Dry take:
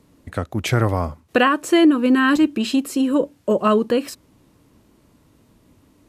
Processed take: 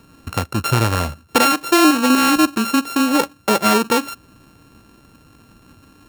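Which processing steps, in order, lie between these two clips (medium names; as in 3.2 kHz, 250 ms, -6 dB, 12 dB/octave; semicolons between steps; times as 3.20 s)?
sorted samples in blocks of 32 samples; in parallel at +2.5 dB: compression, threshold -27 dBFS, peak gain reduction 15.5 dB; on the sum: trim -1 dB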